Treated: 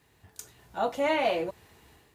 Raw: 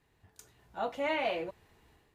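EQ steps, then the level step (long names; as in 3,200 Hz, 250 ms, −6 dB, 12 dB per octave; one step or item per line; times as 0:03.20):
high-pass filter 50 Hz
dynamic equaliser 2,500 Hz, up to −5 dB, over −50 dBFS, Q 0.82
high-shelf EQ 4,200 Hz +6.5 dB
+6.5 dB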